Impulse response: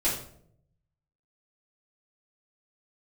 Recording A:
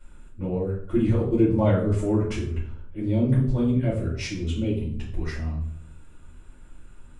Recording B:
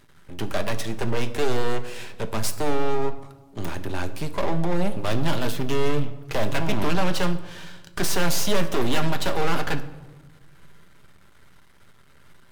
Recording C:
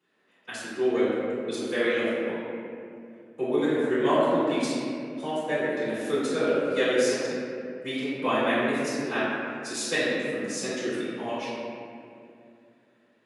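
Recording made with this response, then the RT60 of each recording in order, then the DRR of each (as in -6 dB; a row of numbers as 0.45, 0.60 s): A; 0.65 s, not exponential, 2.5 s; -9.5, 7.5, -14.0 dB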